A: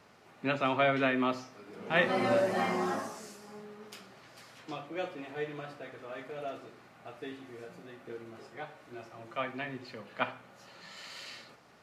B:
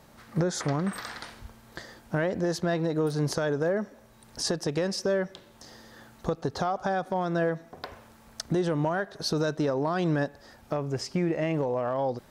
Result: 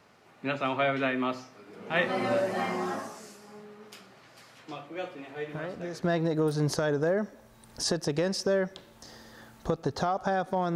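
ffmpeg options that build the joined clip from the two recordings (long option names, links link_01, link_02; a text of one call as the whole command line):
ffmpeg -i cue0.wav -i cue1.wav -filter_complex "[1:a]asplit=2[link_01][link_02];[0:a]apad=whole_dur=10.75,atrim=end=10.75,atrim=end=6.022[link_03];[link_02]atrim=start=2.608:end=7.34[link_04];[link_01]atrim=start=2.08:end=2.61,asetpts=PTS-STARTPTS,volume=-10dB,afade=type=in:duration=0.004:curve=hsin,afade=type=out:start_time=0.526:duration=0.004:curve=hsin,adelay=242109S[link_05];[link_03][link_04]acrossfade=duration=0.004:curve1=hsin:curve2=hsin[link_06];[link_06][link_05]amix=inputs=2:normalize=0" out.wav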